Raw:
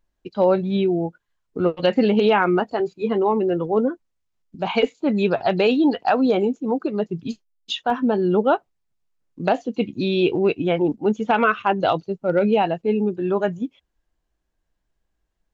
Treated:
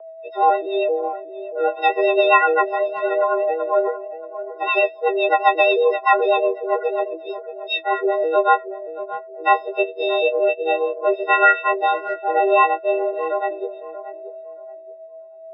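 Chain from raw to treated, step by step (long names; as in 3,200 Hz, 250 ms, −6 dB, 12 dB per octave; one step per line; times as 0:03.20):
every partial snapped to a pitch grid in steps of 6 semitones
steady tone 480 Hz −36 dBFS
spectral peaks only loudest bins 64
rotating-speaker cabinet horn 8 Hz, later 0.65 Hz, at 0:07.45
single-sideband voice off tune +170 Hz 210–3,200 Hz
on a send: tape delay 629 ms, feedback 28%, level −11 dB, low-pass 1,100 Hz
on the sum: level +2.5 dB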